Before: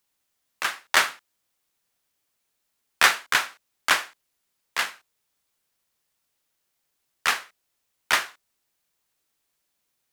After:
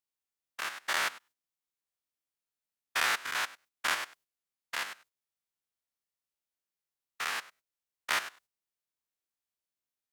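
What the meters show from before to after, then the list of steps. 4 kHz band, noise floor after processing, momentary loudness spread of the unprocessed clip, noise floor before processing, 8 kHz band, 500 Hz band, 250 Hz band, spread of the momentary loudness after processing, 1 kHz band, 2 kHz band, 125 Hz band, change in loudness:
−9.0 dB, below −85 dBFS, 12 LU, −77 dBFS, −9.0 dB, −8.5 dB, −9.0 dB, 15 LU, −8.5 dB, −9.0 dB, can't be measured, −9.0 dB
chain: spectrum averaged block by block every 100 ms
noise gate −55 dBFS, range −11 dB
level −5 dB

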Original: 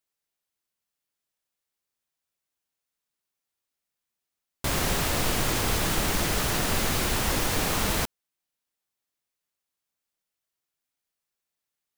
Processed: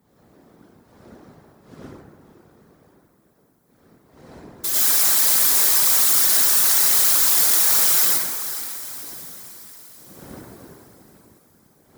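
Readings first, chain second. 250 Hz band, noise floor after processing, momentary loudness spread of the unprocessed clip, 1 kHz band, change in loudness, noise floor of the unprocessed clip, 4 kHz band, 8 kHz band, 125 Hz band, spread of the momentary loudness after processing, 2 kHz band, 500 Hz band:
−7.5 dB, −60 dBFS, 3 LU, −0.5 dB, +12.0 dB, below −85 dBFS, +6.5 dB, +13.5 dB, below −10 dB, 15 LU, +1.0 dB, −5.0 dB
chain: wind on the microphone 160 Hz −32 dBFS
parametric band 2,700 Hz −7.5 dB 0.59 octaves
on a send: feedback delay with all-pass diffusion 482 ms, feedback 51%, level −12 dB
on the sum: dense smooth reverb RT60 1.4 s, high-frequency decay 0.45×, pre-delay 80 ms, DRR −7.5 dB
random phases in short frames
first difference
level +7 dB

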